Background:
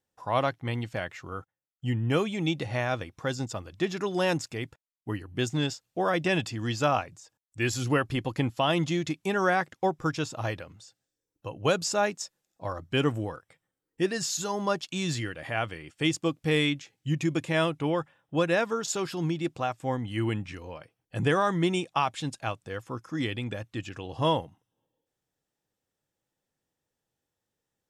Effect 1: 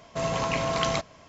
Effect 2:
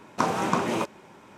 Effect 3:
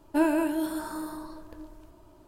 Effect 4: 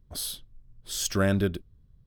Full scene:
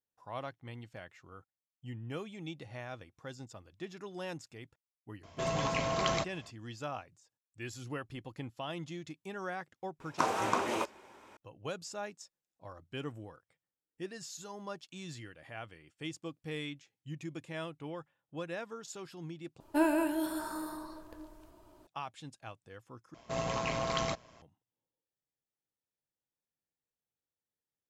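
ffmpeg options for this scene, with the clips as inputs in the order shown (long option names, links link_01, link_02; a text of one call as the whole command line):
ffmpeg -i bed.wav -i cue0.wav -i cue1.wav -i cue2.wav -filter_complex "[1:a]asplit=2[link_01][link_02];[0:a]volume=-15dB[link_03];[2:a]equalizer=frequency=160:width=1.4:gain=-15[link_04];[3:a]lowshelf=frequency=300:gain=-6[link_05];[link_02]tremolo=f=120:d=0.519[link_06];[link_03]asplit=3[link_07][link_08][link_09];[link_07]atrim=end=19.604[link_10];[link_05]atrim=end=2.27,asetpts=PTS-STARTPTS,volume=-2dB[link_11];[link_08]atrim=start=21.866:end=23.144[link_12];[link_06]atrim=end=1.28,asetpts=PTS-STARTPTS,volume=-4.5dB[link_13];[link_09]atrim=start=24.416[link_14];[link_01]atrim=end=1.28,asetpts=PTS-STARTPTS,volume=-5.5dB,afade=type=in:duration=0.004:curve=hsin,afade=type=out:start_time=1.276:duration=0.004:curve=hsin,adelay=5230[link_15];[link_04]atrim=end=1.37,asetpts=PTS-STARTPTS,volume=-4.5dB,afade=type=in:duration=0.004:curve=hsin,afade=type=out:start_time=1.366:duration=0.004:curve=hsin,adelay=10000[link_16];[link_10][link_11]acrossfade=duration=0.004:curve1=hsin:curve2=hsin[link_17];[link_17][link_12]acrossfade=duration=0.004:curve1=hsin:curve2=hsin[link_18];[link_18][link_13]acrossfade=duration=0.004:curve1=hsin:curve2=hsin[link_19];[link_19][link_14]acrossfade=duration=0.004:curve1=hsin:curve2=hsin[link_20];[link_20][link_15][link_16]amix=inputs=3:normalize=0" out.wav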